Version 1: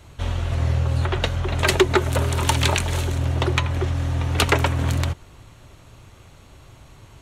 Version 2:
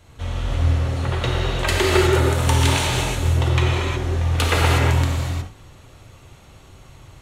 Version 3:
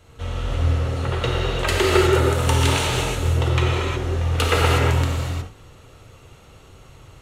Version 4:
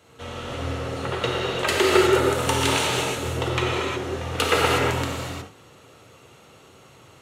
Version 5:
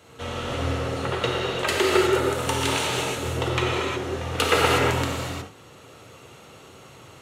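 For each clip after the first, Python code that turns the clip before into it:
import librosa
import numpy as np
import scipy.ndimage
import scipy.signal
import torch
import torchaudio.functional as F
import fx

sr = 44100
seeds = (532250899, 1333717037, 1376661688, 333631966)

y1 = fx.rev_gated(x, sr, seeds[0], gate_ms=390, shape='flat', drr_db=-5.0)
y1 = F.gain(torch.from_numpy(y1), -4.5).numpy()
y2 = fx.small_body(y1, sr, hz=(460.0, 1300.0, 2800.0), ring_ms=30, db=7)
y2 = F.gain(torch.from_numpy(y2), -1.5).numpy()
y3 = scipy.signal.sosfilt(scipy.signal.butter(2, 170.0, 'highpass', fs=sr, output='sos'), y2)
y4 = fx.rider(y3, sr, range_db=5, speed_s=2.0)
y4 = F.gain(torch.from_numpy(y4), -1.5).numpy()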